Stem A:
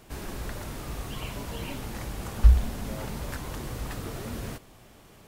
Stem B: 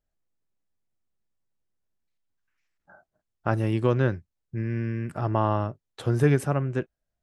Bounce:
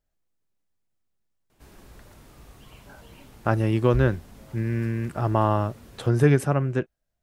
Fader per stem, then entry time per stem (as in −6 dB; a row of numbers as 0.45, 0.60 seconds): −13.0, +2.5 decibels; 1.50, 0.00 seconds